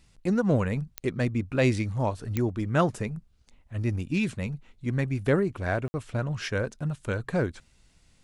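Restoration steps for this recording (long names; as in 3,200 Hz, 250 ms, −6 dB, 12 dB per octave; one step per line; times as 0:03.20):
click removal
ambience match 0:05.88–0:05.94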